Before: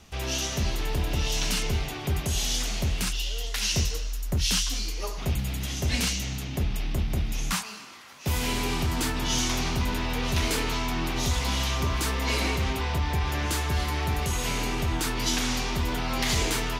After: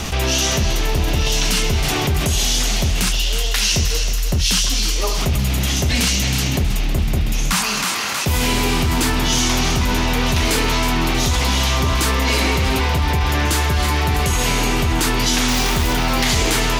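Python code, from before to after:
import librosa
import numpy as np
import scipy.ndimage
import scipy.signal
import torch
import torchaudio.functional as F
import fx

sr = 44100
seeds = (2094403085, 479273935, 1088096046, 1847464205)

y = fx.quant_companded(x, sr, bits=4, at=(15.48, 15.93))
y = fx.echo_thinned(y, sr, ms=319, feedback_pct=44, hz=420.0, wet_db=-10)
y = fx.env_flatten(y, sr, amount_pct=70)
y = F.gain(torch.from_numpy(y), 6.0).numpy()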